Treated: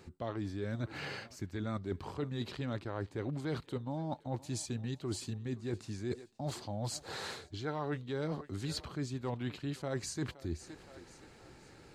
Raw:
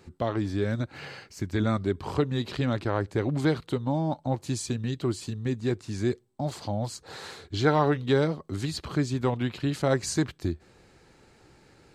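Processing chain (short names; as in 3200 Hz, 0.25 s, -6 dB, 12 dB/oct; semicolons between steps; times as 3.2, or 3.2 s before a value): thinning echo 0.519 s, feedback 42%, high-pass 330 Hz, level -22 dB; reverse; compressor 6:1, threshold -35 dBFS, peak gain reduction 16.5 dB; reverse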